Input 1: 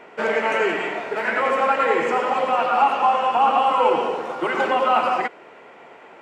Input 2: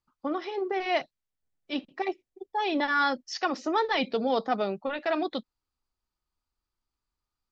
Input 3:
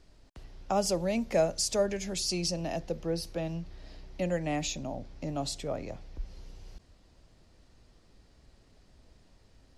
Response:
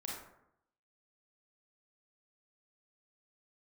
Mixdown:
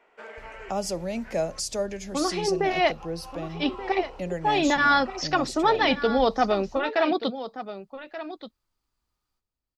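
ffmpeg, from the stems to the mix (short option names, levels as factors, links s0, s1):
-filter_complex "[0:a]highpass=f=460:p=1,alimiter=limit=0.158:level=0:latency=1:release=475,volume=0.158,asplit=3[s0][s1][s2];[s0]atrim=end=1.6,asetpts=PTS-STARTPTS,afade=t=out:st=1.596:d=0.004:c=hsin[s3];[s1]atrim=start=1.6:end=2.71,asetpts=PTS-STARTPTS,volume=0[s4];[s2]atrim=start=2.71,asetpts=PTS-STARTPTS,afade=t=in:d=0.004:c=hsin[s5];[s3][s4][s5]concat=n=3:v=0:a=1[s6];[1:a]dynaudnorm=f=170:g=3:m=3.55,adelay=1900,volume=0.531,asplit=2[s7][s8];[s8]volume=0.224[s9];[2:a]agate=range=0.0282:threshold=0.00447:ratio=16:detection=peak,volume=0.891,asplit=2[s10][s11];[s11]apad=whole_len=273967[s12];[s6][s12]sidechaincompress=threshold=0.00891:ratio=8:attack=16:release=132[s13];[s9]aecho=0:1:1180:1[s14];[s13][s7][s10][s14]amix=inputs=4:normalize=0"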